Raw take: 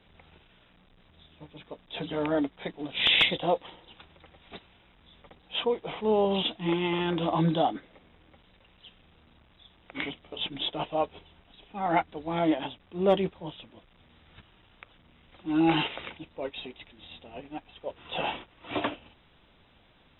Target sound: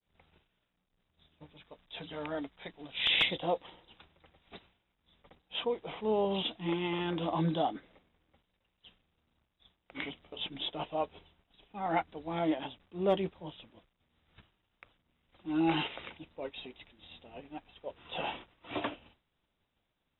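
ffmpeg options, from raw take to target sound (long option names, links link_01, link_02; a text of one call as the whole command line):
ffmpeg -i in.wav -filter_complex "[0:a]agate=range=-33dB:threshold=-50dB:ratio=3:detection=peak,asettb=1/sr,asplit=3[link_01][link_02][link_03];[link_01]atrim=end=1.544[link_04];[link_02]atrim=start=1.54:end=3.1,asetpts=PTS-STARTPTS,afade=type=in:duration=0.004:curve=qsin,afade=type=out:start_time=1.556:duration=0.004:curve=qsin,equalizer=frequency=300:width_type=o:width=2.7:gain=-6.5[link_05];[link_03]atrim=start=3.096[link_06];[link_04][link_05]acrossfade=duration=0.004:curve1=hsin:curve2=qsin[link_07];[link_07][link_06]acrossfade=duration=0.004:curve1=qsin:curve2=hsin,volume=-5.5dB" out.wav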